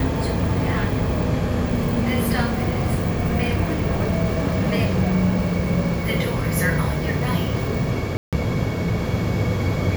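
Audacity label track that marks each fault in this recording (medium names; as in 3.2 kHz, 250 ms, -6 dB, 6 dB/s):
8.170000	8.330000	dropout 157 ms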